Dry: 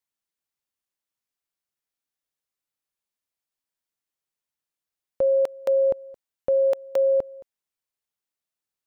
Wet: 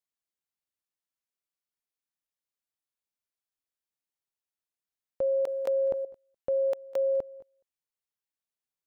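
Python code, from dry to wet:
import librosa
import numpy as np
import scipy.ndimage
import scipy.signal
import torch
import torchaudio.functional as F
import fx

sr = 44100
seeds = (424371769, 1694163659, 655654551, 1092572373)

y = x + 10.0 ** (-23.5 / 20.0) * np.pad(x, (int(201 * sr / 1000.0), 0))[:len(x)]
y = fx.env_flatten(y, sr, amount_pct=70, at=(5.47, 6.05))
y = y * librosa.db_to_amplitude(-6.5)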